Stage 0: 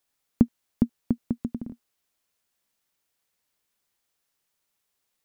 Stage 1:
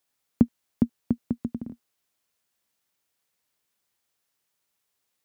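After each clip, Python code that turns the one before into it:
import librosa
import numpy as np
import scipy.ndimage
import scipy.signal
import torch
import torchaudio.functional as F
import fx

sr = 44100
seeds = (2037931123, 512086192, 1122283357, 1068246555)

y = scipy.signal.sosfilt(scipy.signal.butter(4, 55.0, 'highpass', fs=sr, output='sos'), x)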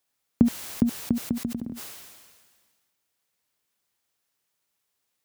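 y = fx.sustainer(x, sr, db_per_s=35.0)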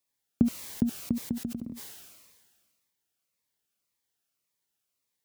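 y = fx.notch_cascade(x, sr, direction='falling', hz=1.8)
y = F.gain(torch.from_numpy(y), -4.0).numpy()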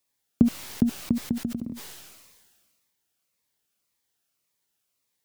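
y = fx.tracing_dist(x, sr, depth_ms=0.12)
y = F.gain(torch.from_numpy(y), 4.5).numpy()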